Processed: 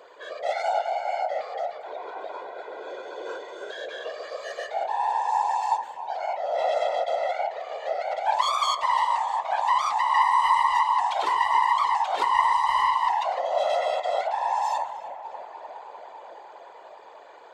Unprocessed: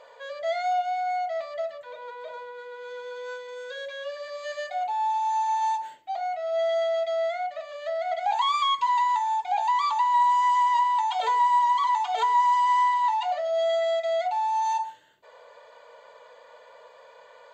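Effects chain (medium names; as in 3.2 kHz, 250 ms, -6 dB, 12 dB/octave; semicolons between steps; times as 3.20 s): self-modulated delay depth 0.085 ms; tape echo 304 ms, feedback 88%, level -13.5 dB, low-pass 3 kHz; whisper effect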